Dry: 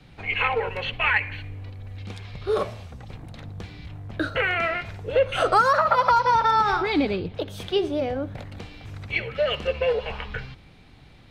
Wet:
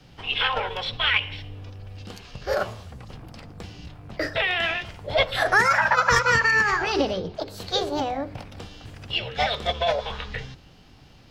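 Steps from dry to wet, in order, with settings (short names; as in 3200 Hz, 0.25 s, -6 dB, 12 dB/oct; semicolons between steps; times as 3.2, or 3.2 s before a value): notches 50/100/150/200/250/300/350/400/450 Hz; formant shift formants +4 st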